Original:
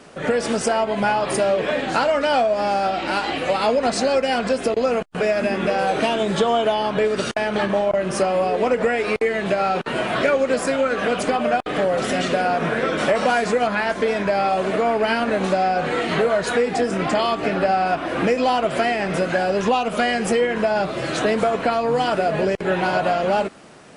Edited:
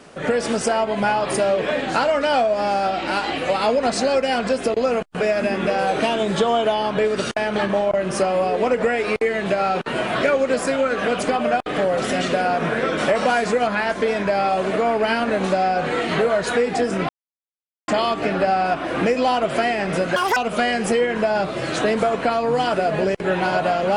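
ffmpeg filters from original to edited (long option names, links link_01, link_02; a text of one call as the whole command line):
ffmpeg -i in.wav -filter_complex "[0:a]asplit=4[link_01][link_02][link_03][link_04];[link_01]atrim=end=17.09,asetpts=PTS-STARTPTS,afade=type=out:start_time=17.086:duration=0.004:curve=hsin,apad=pad_dur=0.79[link_05];[link_02]atrim=start=17.09:end=19.374,asetpts=PTS-STARTPTS,afade=type=in:duration=0.004:curve=hsin[link_06];[link_03]atrim=start=19.37:end=19.77,asetpts=PTS-STARTPTS,asetrate=85995,aresample=44100,atrim=end_sample=9046,asetpts=PTS-STARTPTS[link_07];[link_04]atrim=start=19.766[link_08];[link_05][link_06]concat=n=2:v=0:a=1[link_09];[link_09][link_07]acrossfade=duration=0.004:curve1=hsin:curve2=hsin[link_10];[link_10][link_08]acrossfade=duration=0.004:curve1=hsin:curve2=hsin" out.wav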